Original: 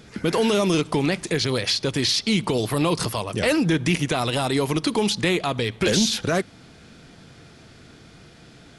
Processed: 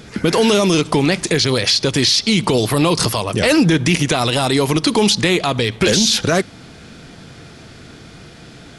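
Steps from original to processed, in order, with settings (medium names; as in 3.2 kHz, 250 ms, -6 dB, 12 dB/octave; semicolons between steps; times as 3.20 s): dynamic bell 5.5 kHz, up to +4 dB, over -37 dBFS, Q 0.96; peak limiter -14 dBFS, peak gain reduction 6 dB; trim +8.5 dB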